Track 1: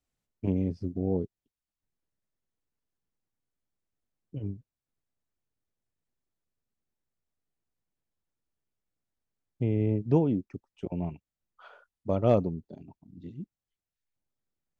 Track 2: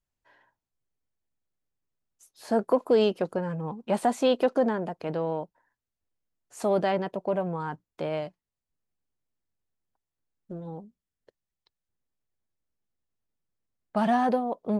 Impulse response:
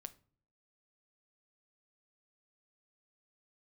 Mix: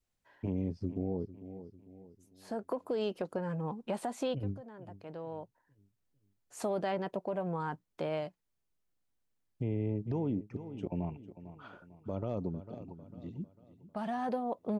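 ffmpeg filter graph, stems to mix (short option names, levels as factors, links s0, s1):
-filter_complex "[0:a]adynamicequalizer=threshold=0.00501:dfrequency=970:dqfactor=1.6:tfrequency=970:tqfactor=1.6:attack=5:release=100:ratio=0.375:range=3:mode=boostabove:tftype=bell,alimiter=limit=0.126:level=0:latency=1:release=71,acrossover=split=470|3000[s0][s1][s2];[s1]acompressor=threshold=0.0178:ratio=6[s3];[s0][s3][s2]amix=inputs=3:normalize=0,volume=0.891,asplit=3[s4][s5][s6];[s5]volume=0.15[s7];[1:a]acompressor=threshold=0.0501:ratio=3,volume=0.708[s8];[s6]apad=whole_len=652610[s9];[s8][s9]sidechaincompress=threshold=0.00355:ratio=16:attack=16:release=1110[s10];[s7]aecho=0:1:449|898|1347|1796|2245|2694:1|0.41|0.168|0.0689|0.0283|0.0116[s11];[s4][s10][s11]amix=inputs=3:normalize=0,alimiter=level_in=1.06:limit=0.0631:level=0:latency=1:release=224,volume=0.944"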